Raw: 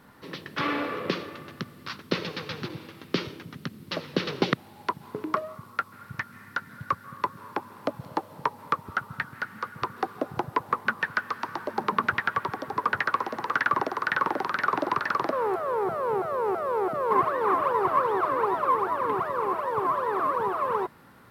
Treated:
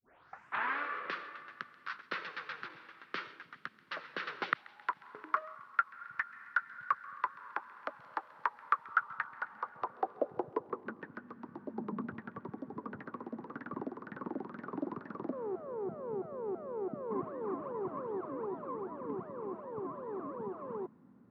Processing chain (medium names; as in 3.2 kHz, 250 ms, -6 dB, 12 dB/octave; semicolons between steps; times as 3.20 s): tape start-up on the opening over 0.78 s; band-pass sweep 1.5 kHz -> 230 Hz, 8.83–11.36 s; feedback echo behind a high-pass 134 ms, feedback 62%, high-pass 1.9 kHz, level -18 dB